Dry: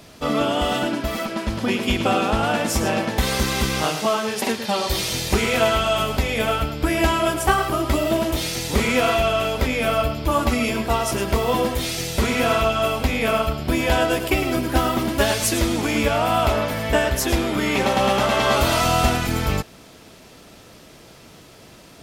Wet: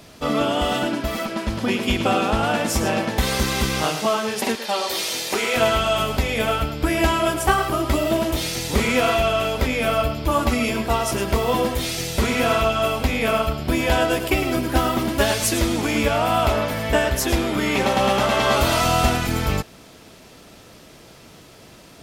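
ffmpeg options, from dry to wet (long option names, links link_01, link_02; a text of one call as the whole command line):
ffmpeg -i in.wav -filter_complex "[0:a]asettb=1/sr,asplit=3[link_01][link_02][link_03];[link_01]atrim=end=4.554[link_04];[link_02]atrim=start=4.55:end=5.56,asetpts=PTS-STARTPTS,afade=type=in:duration=0.004:curve=qsin,afade=type=out:start_time=1.006:duration=0.004:curve=qsin,highpass=360[link_05];[link_03]atrim=start=5.556[link_06];[link_04][link_05]acrossfade=duration=0.004:curve1=hsin:curve2=qsin[link_07];[link_07][link_06]acrossfade=duration=0.004:curve1=qsin:curve2=hsin" out.wav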